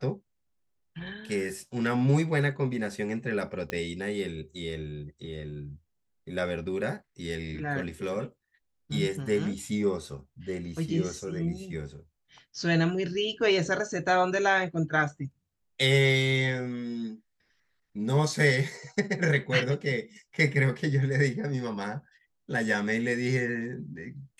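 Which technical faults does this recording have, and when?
3.7 pop -17 dBFS

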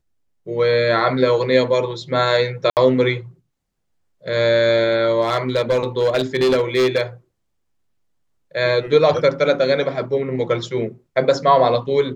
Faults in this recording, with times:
2.7–2.77 gap 68 ms
5.21–7.02 clipped -12.5 dBFS

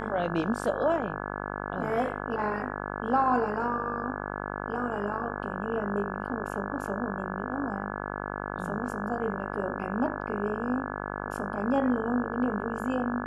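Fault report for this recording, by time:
buzz 50 Hz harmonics 34 -35 dBFS

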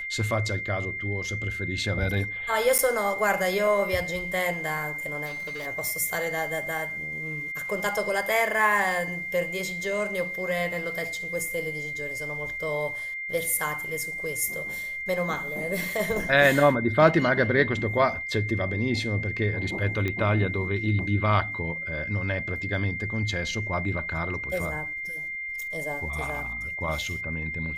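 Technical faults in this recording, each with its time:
tone 2100 Hz -31 dBFS
2.78–2.79 gap 8.7 ms
5.25–5.67 clipped -31.5 dBFS
20.08 pop -16 dBFS

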